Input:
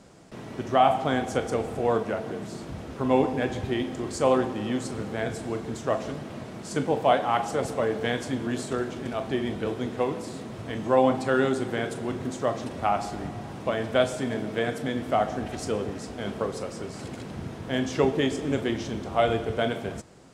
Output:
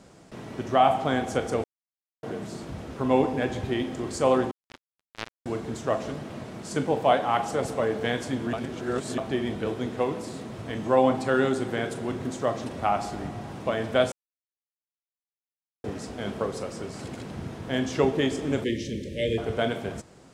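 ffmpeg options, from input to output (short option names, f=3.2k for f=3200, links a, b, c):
-filter_complex "[0:a]asettb=1/sr,asplit=3[a][b][c];[a]atrim=end=4.514[d];[b]atrim=start=4.51:end=5.46,asetpts=PTS-STARTPTS,afade=t=in:d=0.004:c=qsin,afade=t=out:st=0.946:d=0.004:c=qsin,acrusher=bits=2:mix=0:aa=0.5[e];[c]atrim=start=5.456[f];[d][e]acrossfade=d=0.004:c1=hsin:c2=qsin[g];[g][f]acrossfade=d=0.004:c1=qsin:c2=hsin,asettb=1/sr,asplit=3[h][i][j];[h]atrim=end=18.644[k];[i]atrim=start=18.64:end=19.38,asetpts=PTS-STARTPTS,afade=t=in:d=0.004:c=qsin,afade=t=out:st=0.736:d=0.004:c=qsin,asuperstop=centerf=1000:order=20:qfactor=0.87[l];[j]atrim=start=19.376[m];[k][l]acrossfade=d=0.004:c1=hsin:c2=qsin[n];[n][m]acrossfade=d=0.004:c1=qsin:c2=hsin,asplit=7[o][p][q][r][s][t][u];[o]atrim=end=1.64,asetpts=PTS-STARTPTS,afade=t=out:st=1.636:d=0.004:c=hsin[v];[p]atrim=start=1.64:end=2.23,asetpts=PTS-STARTPTS,volume=0[w];[q]atrim=start=2.23:end=8.532,asetpts=PTS-STARTPTS,afade=t=in:d=0.004:c=hsin[x];[r]atrim=start=8.528:end=9.182,asetpts=PTS-STARTPTS,areverse[y];[s]atrim=start=9.178:end=14.12,asetpts=PTS-STARTPTS,afade=t=out:st=4.938:d=0.004:c=hsin[z];[t]atrim=start=14.12:end=15.84,asetpts=PTS-STARTPTS,volume=0[aa];[u]atrim=start=15.84,asetpts=PTS-STARTPTS,afade=t=in:d=0.004:c=hsin[ab];[v][w][x]concat=n=3:v=0:a=1[ac];[ac][y]acrossfade=d=0.004:c1=hsin:c2=hsin[ad];[z][aa][ab]concat=n=3:v=0:a=1[ae];[ad][ae]acrossfade=d=0.004:c1=hsin:c2=hsin"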